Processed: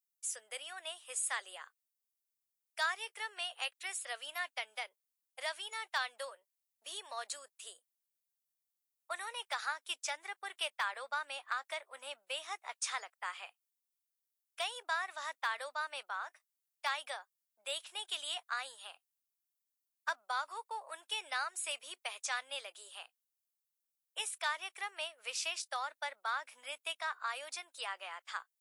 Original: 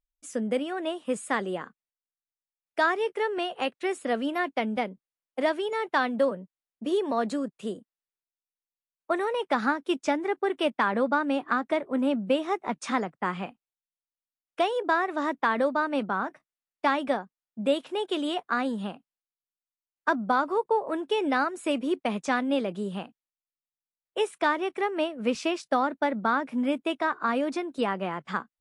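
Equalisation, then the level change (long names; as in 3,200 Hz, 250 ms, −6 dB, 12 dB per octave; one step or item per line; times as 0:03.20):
high-pass filter 570 Hz 24 dB per octave
first difference
+4.5 dB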